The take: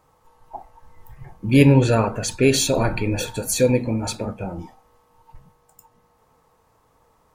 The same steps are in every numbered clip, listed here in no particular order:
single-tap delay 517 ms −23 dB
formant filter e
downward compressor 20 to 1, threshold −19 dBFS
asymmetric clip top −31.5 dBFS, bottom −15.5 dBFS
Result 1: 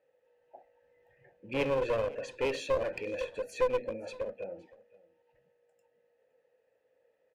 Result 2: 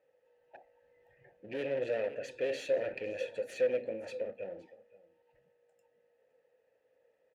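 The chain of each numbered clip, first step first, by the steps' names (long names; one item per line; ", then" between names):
formant filter, then downward compressor, then asymmetric clip, then single-tap delay
single-tap delay, then asymmetric clip, then formant filter, then downward compressor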